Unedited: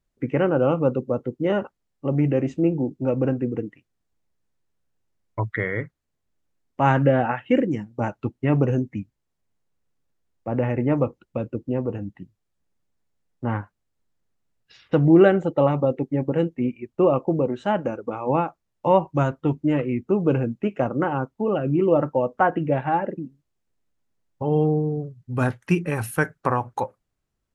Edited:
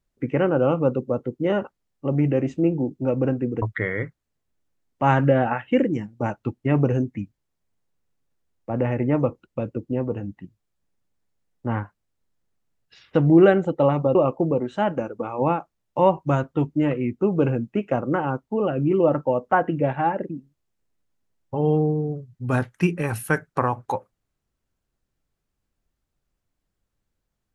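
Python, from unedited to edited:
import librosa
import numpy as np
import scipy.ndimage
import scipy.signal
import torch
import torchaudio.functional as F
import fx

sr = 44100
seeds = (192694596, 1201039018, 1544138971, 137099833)

y = fx.edit(x, sr, fx.cut(start_s=3.62, length_s=1.78),
    fx.cut(start_s=15.93, length_s=1.1), tone=tone)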